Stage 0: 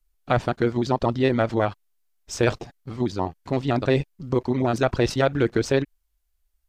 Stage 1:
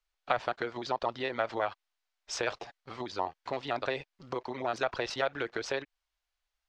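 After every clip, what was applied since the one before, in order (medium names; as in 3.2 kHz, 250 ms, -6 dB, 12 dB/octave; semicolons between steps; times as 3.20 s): compression, threshold -24 dBFS, peak gain reduction 9 dB; three-band isolator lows -20 dB, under 510 Hz, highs -22 dB, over 5.9 kHz; trim +2 dB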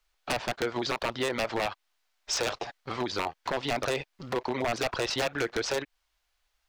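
in parallel at -1 dB: compression 6:1, threshold -38 dBFS, peak gain reduction 15 dB; on the sum: wavefolder -25 dBFS; trim +4 dB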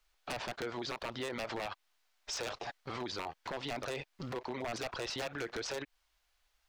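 peak limiter -31 dBFS, peak gain reduction 10 dB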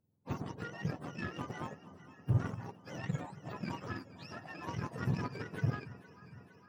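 spectrum inverted on a logarithmic axis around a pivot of 820 Hz; echo whose repeats swap between lows and highs 230 ms, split 840 Hz, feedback 83%, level -11 dB; Chebyshev shaper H 3 -25 dB, 7 -24 dB, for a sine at -21 dBFS; trim +2 dB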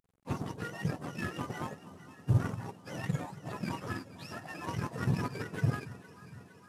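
CVSD coder 64 kbps; trim +3.5 dB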